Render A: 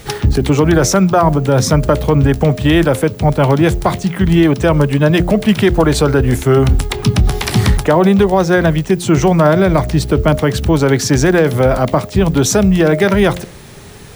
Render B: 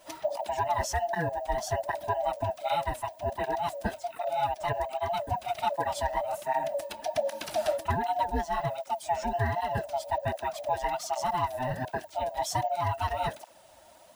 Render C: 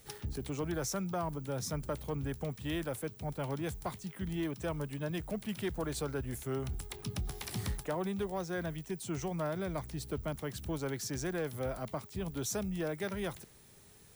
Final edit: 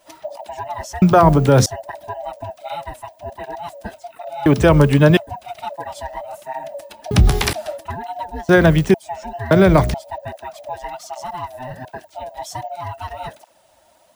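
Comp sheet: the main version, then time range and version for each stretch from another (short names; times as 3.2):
B
1.02–1.66 from A
4.46–5.17 from A
7.11–7.53 from A
8.49–8.94 from A
9.51–9.94 from A
not used: C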